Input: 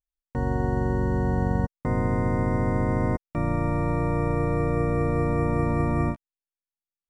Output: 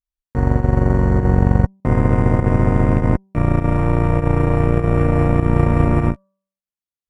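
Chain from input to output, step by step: bass shelf 180 Hz +8.5 dB; de-hum 193 Hz, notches 9; Chebyshev shaper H 7 -21 dB, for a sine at -6 dBFS; volume shaper 100 bpm, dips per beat 1, -11 dB, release 89 ms; trim +5.5 dB

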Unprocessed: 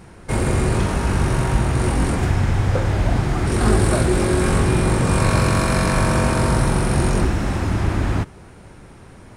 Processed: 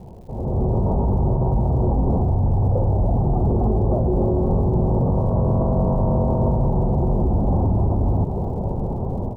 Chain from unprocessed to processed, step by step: steep low-pass 890 Hz 48 dB/octave; peaking EQ 310 Hz -8 dB 0.27 oct; reverse; compression, threshold -28 dBFS, peak gain reduction 15 dB; reverse; peak limiter -31.5 dBFS, peak gain reduction 11.5 dB; level rider gain up to 15.5 dB; crackle 160 per s -51 dBFS; trim +4 dB

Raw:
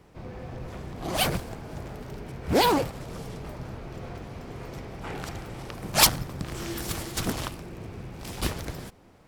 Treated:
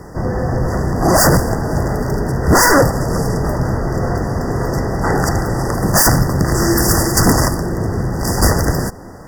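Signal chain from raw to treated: sine folder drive 20 dB, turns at -3 dBFS; FFT band-reject 2–4.6 kHz; trim -3 dB

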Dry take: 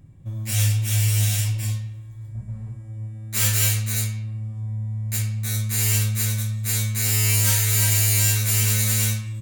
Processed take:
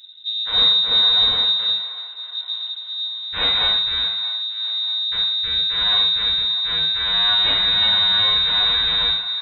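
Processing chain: frequency inversion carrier 3.8 kHz; feedback echo behind a band-pass 632 ms, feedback 52%, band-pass 1.3 kHz, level -14 dB; trim +3.5 dB

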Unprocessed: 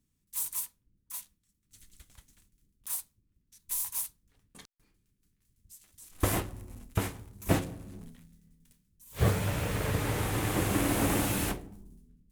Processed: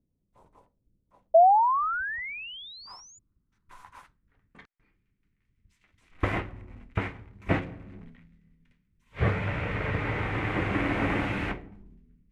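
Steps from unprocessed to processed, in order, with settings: band-stop 1.7 kHz, Q 20; painted sound rise, 1.34–3.19 s, 640–7100 Hz -21 dBFS; low-pass sweep 590 Hz -> 2.1 kHz, 1.23–4.91 s

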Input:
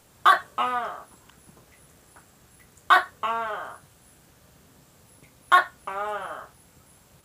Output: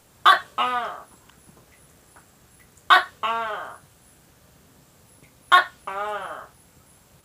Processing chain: dynamic bell 3.4 kHz, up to +7 dB, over -41 dBFS, Q 1; trim +1 dB

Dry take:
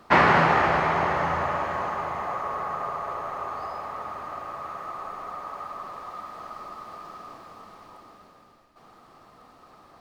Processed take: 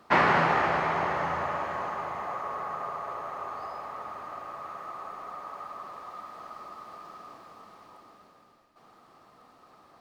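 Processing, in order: bass shelf 70 Hz -10.5 dB; trim -4 dB

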